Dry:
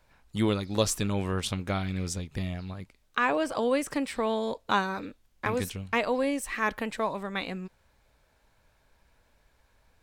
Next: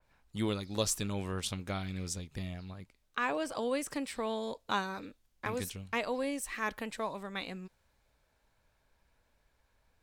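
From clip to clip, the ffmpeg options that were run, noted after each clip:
ffmpeg -i in.wav -af "adynamicequalizer=threshold=0.00631:dfrequency=3300:dqfactor=0.7:tfrequency=3300:tqfactor=0.7:attack=5:release=100:ratio=0.375:range=2.5:mode=boostabove:tftype=highshelf,volume=-7dB" out.wav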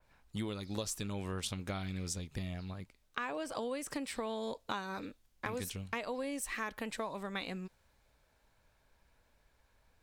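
ffmpeg -i in.wav -af "acompressor=threshold=-36dB:ratio=10,volume=2dB" out.wav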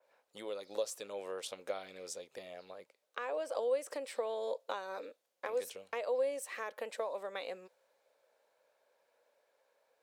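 ffmpeg -i in.wav -af "highpass=frequency=520:width_type=q:width=4.9,volume=-5dB" out.wav

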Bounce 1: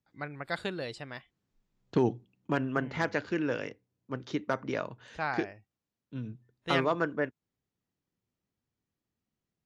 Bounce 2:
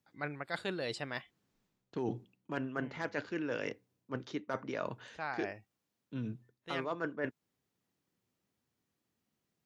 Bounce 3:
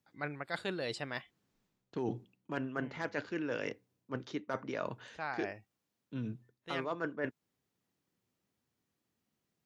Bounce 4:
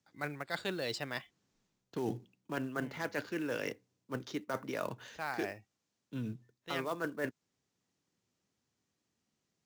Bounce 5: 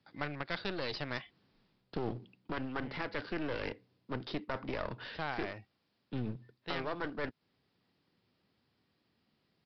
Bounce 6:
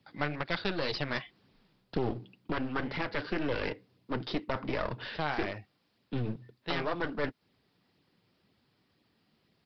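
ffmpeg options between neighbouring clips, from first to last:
ffmpeg -i in.wav -af "highpass=frequency=160:poles=1,areverse,acompressor=threshold=-39dB:ratio=6,areverse,volume=5dB" out.wav
ffmpeg -i in.wav -af anull out.wav
ffmpeg -i in.wav -filter_complex "[0:a]lowpass=frequency=6700:width_type=q:width=1.8,acrossover=split=330[link_01][link_02];[link_02]acrusher=bits=4:mode=log:mix=0:aa=0.000001[link_03];[link_01][link_03]amix=inputs=2:normalize=0" out.wav
ffmpeg -i in.wav -af "acompressor=threshold=-41dB:ratio=2.5,aresample=11025,aeval=exprs='clip(val(0),-1,0.00266)':channel_layout=same,aresample=44100,volume=8dB" out.wav
ffmpeg -i in.wav -af "flanger=delay=0.3:depth=6.5:regen=-35:speed=2:shape=sinusoidal,volume=8.5dB" out.wav

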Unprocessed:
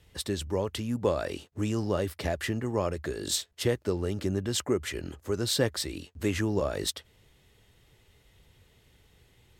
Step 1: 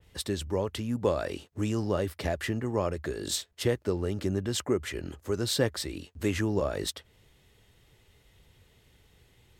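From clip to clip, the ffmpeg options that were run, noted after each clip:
ffmpeg -i in.wav -af "adynamicequalizer=threshold=0.00562:dfrequency=2700:dqfactor=0.7:tfrequency=2700:tqfactor=0.7:attack=5:release=100:ratio=0.375:range=2:mode=cutabove:tftype=highshelf" out.wav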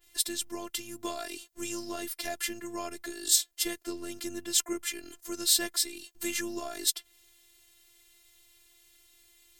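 ffmpeg -i in.wav -af "crystalizer=i=8:c=0,afftfilt=real='hypot(re,im)*cos(PI*b)':imag='0':win_size=512:overlap=0.75,volume=-6dB" out.wav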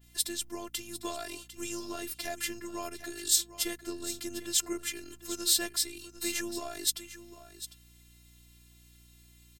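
ffmpeg -i in.wav -af "aeval=exprs='val(0)+0.00126*(sin(2*PI*60*n/s)+sin(2*PI*2*60*n/s)/2+sin(2*PI*3*60*n/s)/3+sin(2*PI*4*60*n/s)/4+sin(2*PI*5*60*n/s)/5)':channel_layout=same,aecho=1:1:751:0.211,volume=-1.5dB" out.wav

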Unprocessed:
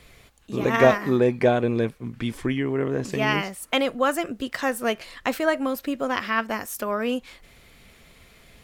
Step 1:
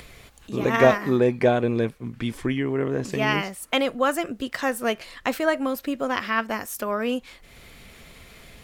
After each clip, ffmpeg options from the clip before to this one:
ffmpeg -i in.wav -af "acompressor=mode=upward:threshold=-39dB:ratio=2.5" out.wav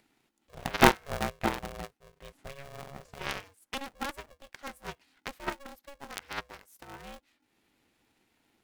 ffmpeg -i in.wav -af "aeval=exprs='0.631*(cos(1*acos(clip(val(0)/0.631,-1,1)))-cos(1*PI/2))+0.2*(cos(3*acos(clip(val(0)/0.631,-1,1)))-cos(3*PI/2))':channel_layout=same,aeval=exprs='val(0)*sgn(sin(2*PI*280*n/s))':channel_layout=same,volume=1dB" out.wav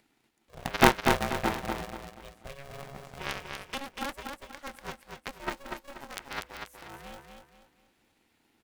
ffmpeg -i in.wav -af "aecho=1:1:241|482|723|964:0.562|0.197|0.0689|0.0241" out.wav

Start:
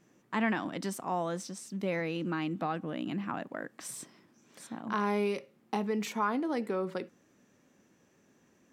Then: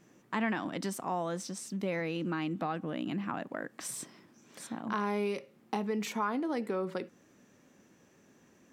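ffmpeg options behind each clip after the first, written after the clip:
ffmpeg -i in.wav -af "acompressor=threshold=-41dB:ratio=1.5,volume=3.5dB" out.wav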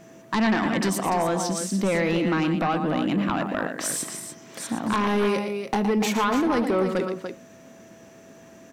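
ffmpeg -i in.wav -af "aecho=1:1:116.6|291.5:0.355|0.355,aeval=exprs='val(0)+0.000794*sin(2*PI*660*n/s)':channel_layout=same,aeval=exprs='0.141*sin(PI/2*2.51*val(0)/0.141)':channel_layout=same" out.wav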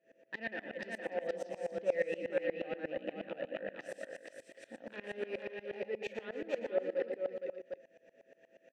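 ffmpeg -i in.wav -filter_complex "[0:a]asplit=3[link_01][link_02][link_03];[link_01]bandpass=frequency=530:width_type=q:width=8,volume=0dB[link_04];[link_02]bandpass=frequency=1840:width_type=q:width=8,volume=-6dB[link_05];[link_03]bandpass=frequency=2480:width_type=q:width=8,volume=-9dB[link_06];[link_04][link_05][link_06]amix=inputs=3:normalize=0,asplit=2[link_07][link_08];[link_08]aecho=0:1:464:0.668[link_09];[link_07][link_09]amix=inputs=2:normalize=0,aeval=exprs='val(0)*pow(10,-22*if(lt(mod(-8.4*n/s,1),2*abs(-8.4)/1000),1-mod(-8.4*n/s,1)/(2*abs(-8.4)/1000),(mod(-8.4*n/s,1)-2*abs(-8.4)/1000)/(1-2*abs(-8.4)/1000))/20)':channel_layout=same,volume=2dB" out.wav

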